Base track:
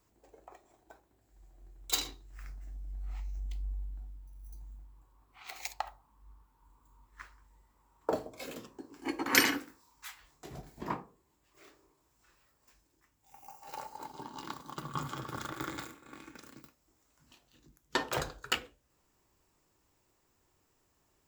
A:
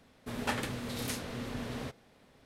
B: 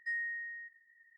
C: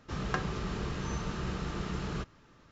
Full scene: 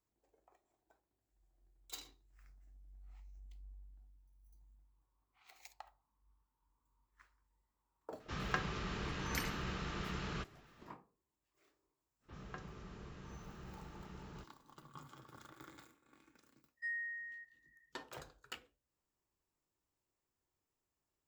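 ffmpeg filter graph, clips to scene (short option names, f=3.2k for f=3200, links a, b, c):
-filter_complex "[3:a]asplit=2[a][b];[0:a]volume=-17dB[c];[a]equalizer=f=2.4k:t=o:w=2.4:g=7[d];[b]acrossover=split=4300[e][f];[f]adelay=40[g];[e][g]amix=inputs=2:normalize=0[h];[d]atrim=end=2.71,asetpts=PTS-STARTPTS,volume=-7.5dB,afade=t=in:d=0.004:c=hsin,afade=t=out:st=2.706:d=0.004:c=hsin,adelay=8200[i];[h]atrim=end=2.71,asetpts=PTS-STARTPTS,volume=-16.5dB,afade=t=in:d=0.05,afade=t=out:st=2.66:d=0.05,adelay=538020S[j];[2:a]atrim=end=1.17,asetpts=PTS-STARTPTS,volume=-4dB,afade=t=in:d=0.1,afade=t=out:st=1.07:d=0.1,adelay=16760[k];[c][i][j][k]amix=inputs=4:normalize=0"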